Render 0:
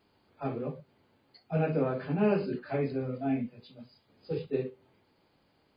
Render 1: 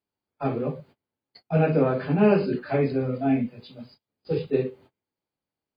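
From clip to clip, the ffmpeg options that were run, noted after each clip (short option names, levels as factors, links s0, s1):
-af "agate=range=0.0355:threshold=0.00141:ratio=16:detection=peak,volume=2.37"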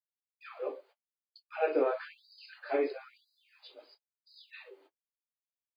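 -af "agate=range=0.0224:threshold=0.00316:ratio=3:detection=peak,afftfilt=real='re*gte(b*sr/1024,260*pow(3900/260,0.5+0.5*sin(2*PI*0.98*pts/sr)))':imag='im*gte(b*sr/1024,260*pow(3900/260,0.5+0.5*sin(2*PI*0.98*pts/sr)))':win_size=1024:overlap=0.75,volume=0.562"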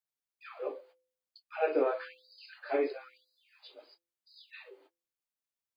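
-af "bandreject=f=170.2:t=h:w=4,bandreject=f=340.4:t=h:w=4,bandreject=f=510.6:t=h:w=4"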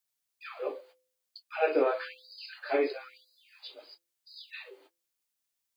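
-af "highshelf=f=2500:g=8.5,volume=1.26"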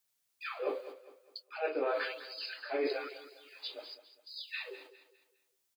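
-af "areverse,acompressor=threshold=0.02:ratio=8,areverse,aecho=1:1:203|406|609|812:0.2|0.0738|0.0273|0.0101,volume=1.58"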